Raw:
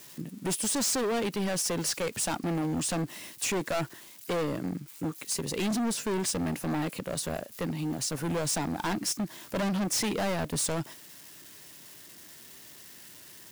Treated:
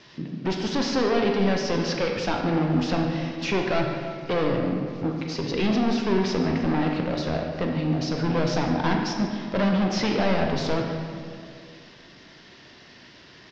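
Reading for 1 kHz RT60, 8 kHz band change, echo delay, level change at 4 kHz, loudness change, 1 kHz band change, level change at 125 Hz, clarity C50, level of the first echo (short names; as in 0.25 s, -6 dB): 2.0 s, -12.0 dB, 0.147 s, +3.0 dB, +5.0 dB, +7.0 dB, +7.5 dB, 3.0 dB, -14.0 dB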